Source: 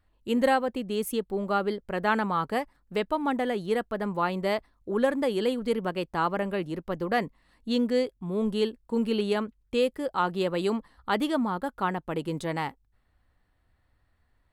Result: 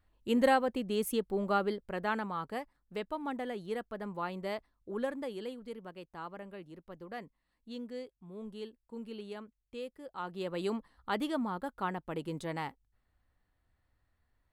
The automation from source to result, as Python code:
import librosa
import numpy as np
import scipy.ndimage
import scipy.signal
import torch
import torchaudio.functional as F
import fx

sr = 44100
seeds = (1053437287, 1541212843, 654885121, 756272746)

y = fx.gain(x, sr, db=fx.line((1.52, -3.0), (2.32, -10.0), (5.0, -10.0), (5.74, -17.0), (10.02, -17.0), (10.64, -7.0)))